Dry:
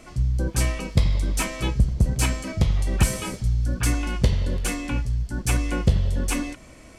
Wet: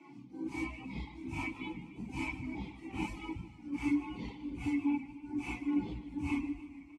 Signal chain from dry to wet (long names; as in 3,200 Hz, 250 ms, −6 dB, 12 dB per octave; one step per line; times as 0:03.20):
random phases in long frames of 200 ms
formant filter u
parametric band 410 Hz −3.5 dB 0.63 octaves
hum removal 120.6 Hz, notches 39
reverb reduction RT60 1.4 s
multiband delay without the direct sound highs, lows 380 ms, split 150 Hz
feedback echo with a swinging delay time 150 ms, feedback 64%, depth 102 cents, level −15 dB
level +4.5 dB